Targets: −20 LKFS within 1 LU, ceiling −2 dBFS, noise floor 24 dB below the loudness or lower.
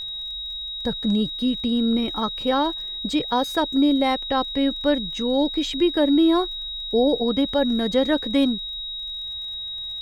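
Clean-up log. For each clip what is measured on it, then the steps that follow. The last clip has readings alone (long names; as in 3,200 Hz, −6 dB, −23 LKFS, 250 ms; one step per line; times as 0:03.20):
crackle rate 30 per second; interfering tone 3,800 Hz; level of the tone −29 dBFS; integrated loudness −22.5 LKFS; sample peak −7.5 dBFS; target loudness −20.0 LKFS
→ click removal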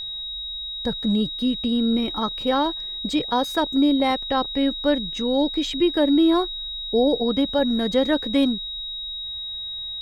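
crackle rate 0.20 per second; interfering tone 3,800 Hz; level of the tone −29 dBFS
→ notch filter 3,800 Hz, Q 30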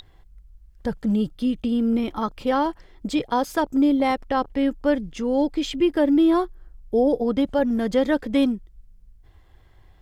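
interfering tone none found; integrated loudness −22.5 LKFS; sample peak −8.5 dBFS; target loudness −20.0 LKFS
→ level +2.5 dB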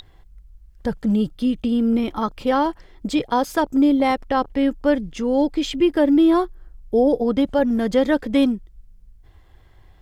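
integrated loudness −20.5 LKFS; sample peak −6.0 dBFS; background noise floor −51 dBFS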